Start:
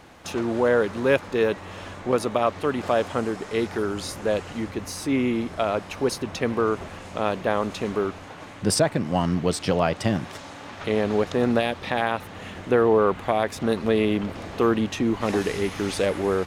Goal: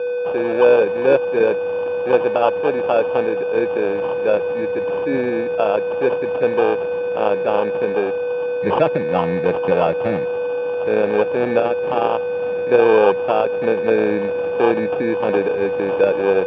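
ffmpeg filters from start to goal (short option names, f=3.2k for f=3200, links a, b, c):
-af "aeval=exprs='val(0)+0.0447*sin(2*PI*490*n/s)':c=same,acrusher=samples=22:mix=1:aa=0.000001,highpass=180,equalizer=f=240:t=q:w=4:g=-6,equalizer=f=510:t=q:w=4:g=6,equalizer=f=860:t=q:w=4:g=5,equalizer=f=1.4k:t=q:w=4:g=-7,lowpass=f=2.5k:w=0.5412,lowpass=f=2.5k:w=1.3066,volume=3.5dB"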